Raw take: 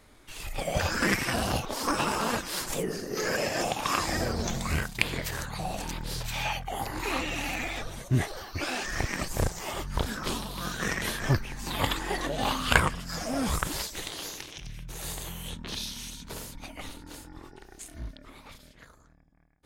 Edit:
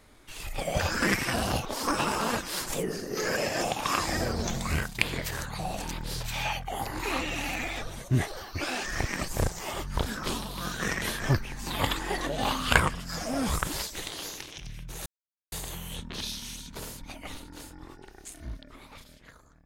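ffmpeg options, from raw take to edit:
ffmpeg -i in.wav -filter_complex "[0:a]asplit=2[link_01][link_02];[link_01]atrim=end=15.06,asetpts=PTS-STARTPTS,afade=type=out:start_time=15.056:duration=0.004:curve=hsin,apad=pad_dur=0.46[link_03];[link_02]atrim=start=15.06,asetpts=PTS-STARTPTS,afade=type=in:duration=0.004:curve=hsin[link_04];[link_03][link_04]concat=n=2:v=0:a=1" out.wav

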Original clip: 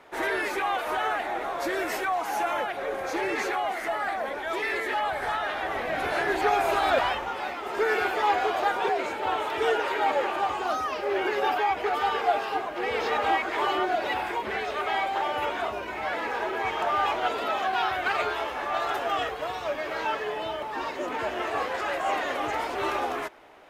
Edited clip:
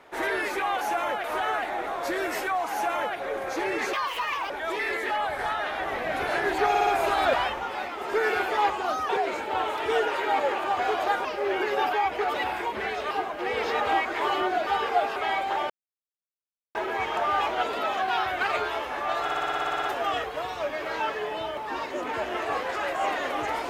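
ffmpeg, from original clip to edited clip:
ffmpeg -i in.wav -filter_complex "[0:a]asplit=28[link_01][link_02][link_03][link_04][link_05][link_06][link_07][link_08][link_09][link_10][link_11][link_12][link_13][link_14][link_15][link_16][link_17][link_18][link_19][link_20][link_21][link_22][link_23][link_24][link_25][link_26][link_27][link_28];[link_01]atrim=end=0.812[link_29];[link_02]atrim=start=2.298:end=2.732[link_30];[link_03]atrim=start=0.808:end=3.504[link_31];[link_04]atrim=start=3.5:end=4.33,asetpts=PTS-STARTPTS,asetrate=64386,aresample=44100[link_32];[link_05]atrim=start=4.326:end=6.582[link_33];[link_06]atrim=start=6.518:end=6.582[link_34];[link_07]atrim=start=6.518:end=6.582[link_35];[link_08]atrim=start=6.518:end=8.352[link_36];[link_09]atrim=start=10.508:end=10.902[link_37];[link_10]atrim=start=8.808:end=10.512[link_38];[link_11]atrim=start=8.348:end=8.812[link_39];[link_12]atrim=start=10.898:end=11.992[link_40];[link_13]atrim=start=14.038:end=14.812[link_41];[link_14]atrim=start=12.478:end=14.042[link_42];[link_15]atrim=start=11.988:end=12.482[link_43];[link_16]atrim=start=14.808:end=15.35,asetpts=PTS-STARTPTS,afade=type=out:start_time=0.538:duration=0.004:curve=hsin[link_44];[link_17]atrim=start=15.35:end=16.4,asetpts=PTS-STARTPTS,volume=0[link_45];[link_18]atrim=start=16.4:end=18.942,asetpts=PTS-STARTPTS,afade=type=in:duration=0.004:curve=hsin[link_46];[link_19]atrim=start=18.878:end=18.942[link_47];[link_20]atrim=start=18.878:end=18.942[link_48];[link_21]atrim=start=18.878:end=18.942[link_49];[link_22]atrim=start=18.878:end=18.942[link_50];[link_23]atrim=start=18.878:end=18.942[link_51];[link_24]atrim=start=18.878:end=18.942[link_52];[link_25]atrim=start=18.878:end=18.942[link_53];[link_26]atrim=start=18.878:end=18.942[link_54];[link_27]atrim=start=18.878:end=18.942[link_55];[link_28]atrim=start=18.878[link_56];[link_29][link_30]acrossfade=duration=0.004:curve1=hsin:curve2=hsin[link_57];[link_57][link_31]acrossfade=duration=0.004:curve1=hsin:curve2=hsin[link_58];[link_58][link_32]acrossfade=duration=0.004:curve1=hsin:curve2=hsin[link_59];[link_59][link_33]acrossfade=duration=0.004:curve1=hsin:curve2=hsin[link_60];[link_60][link_34]acrossfade=duration=0.004:curve1=hsin:curve2=hsin[link_61];[link_61][link_35]acrossfade=duration=0.004:curve1=hsin:curve2=hsin[link_62];[link_62][link_36]acrossfade=duration=0.004:curve1=hsin:curve2=hsin[link_63];[link_63][link_37]acrossfade=duration=0.004:curve1=hsin:curve2=hsin[link_64];[link_64][link_38]acrossfade=duration=0.004:curve1=hsin:curve2=hsin[link_65];[link_65][link_39]acrossfade=duration=0.004:curve1=hsin:curve2=hsin[link_66];[link_66][link_40]acrossfade=duration=0.004:curve1=hsin:curve2=hsin[link_67];[link_67][link_41]acrossfade=duration=0.004:curve1=hsin:curve2=hsin[link_68];[link_68][link_42]acrossfade=duration=0.004:curve1=hsin:curve2=hsin[link_69];[link_69][link_43]acrossfade=duration=0.004:curve1=hsin:curve2=hsin[link_70];[link_44][link_45][link_46]concat=n=3:v=0:a=1[link_71];[link_70][link_71]acrossfade=duration=0.004:curve1=hsin:curve2=hsin[link_72];[link_72][link_47]acrossfade=duration=0.004:curve1=hsin:curve2=hsin[link_73];[link_73][link_48]acrossfade=duration=0.004:curve1=hsin:curve2=hsin[link_74];[link_74][link_49]acrossfade=duration=0.004:curve1=hsin:curve2=hsin[link_75];[link_75][link_50]acrossfade=duration=0.004:curve1=hsin:curve2=hsin[link_76];[link_76][link_51]acrossfade=duration=0.004:curve1=hsin:curve2=hsin[link_77];[link_77][link_52]acrossfade=duration=0.004:curve1=hsin:curve2=hsin[link_78];[link_78][link_53]acrossfade=duration=0.004:curve1=hsin:curve2=hsin[link_79];[link_79][link_54]acrossfade=duration=0.004:curve1=hsin:curve2=hsin[link_80];[link_80][link_55]acrossfade=duration=0.004:curve1=hsin:curve2=hsin[link_81];[link_81][link_56]acrossfade=duration=0.004:curve1=hsin:curve2=hsin" out.wav

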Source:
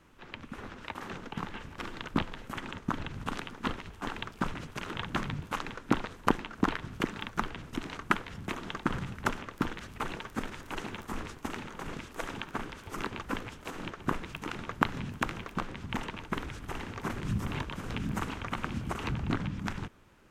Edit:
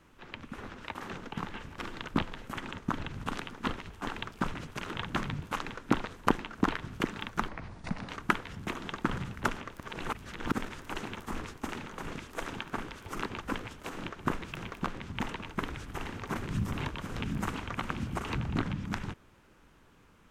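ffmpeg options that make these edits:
ffmpeg -i in.wav -filter_complex "[0:a]asplit=6[link_01][link_02][link_03][link_04][link_05][link_06];[link_01]atrim=end=7.484[link_07];[link_02]atrim=start=7.48:end=7.9,asetpts=PTS-STARTPTS,asetrate=30429,aresample=44100,atrim=end_sample=26843,asetpts=PTS-STARTPTS[link_08];[link_03]atrim=start=7.896:end=9.612[link_09];[link_04]atrim=start=9.608:end=10.332,asetpts=PTS-STARTPTS,areverse[link_10];[link_05]atrim=start=10.328:end=14.382[link_11];[link_06]atrim=start=15.308[link_12];[link_07][link_08]acrossfade=duration=0.004:curve1=hsin:curve2=hsin[link_13];[link_13][link_09]acrossfade=duration=0.004:curve1=hsin:curve2=hsin[link_14];[link_14][link_10]acrossfade=duration=0.004:curve1=hsin:curve2=hsin[link_15];[link_15][link_11]acrossfade=duration=0.004:curve1=hsin:curve2=hsin[link_16];[link_16][link_12]acrossfade=duration=0.004:curve1=hsin:curve2=hsin" out.wav

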